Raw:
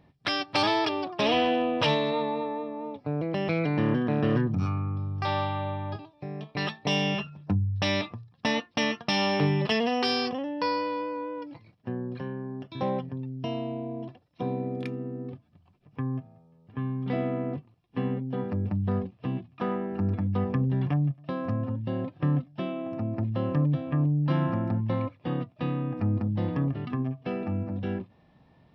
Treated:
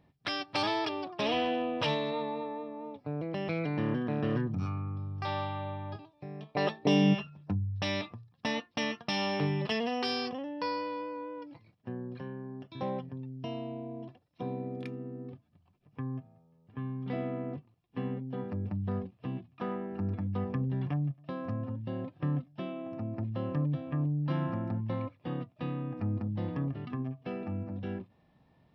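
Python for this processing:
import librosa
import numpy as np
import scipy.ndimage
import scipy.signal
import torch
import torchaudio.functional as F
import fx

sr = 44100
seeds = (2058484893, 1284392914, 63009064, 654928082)

y = fx.peak_eq(x, sr, hz=fx.line((6.54, 670.0), (7.13, 200.0)), db=14.5, octaves=1.6, at=(6.54, 7.13), fade=0.02)
y = F.gain(torch.from_numpy(y), -6.0).numpy()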